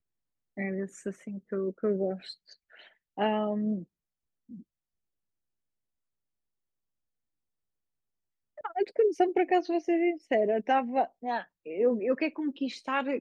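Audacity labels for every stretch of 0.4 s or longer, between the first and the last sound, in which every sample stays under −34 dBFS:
2.300000	3.180000	silence
3.820000	8.650000	silence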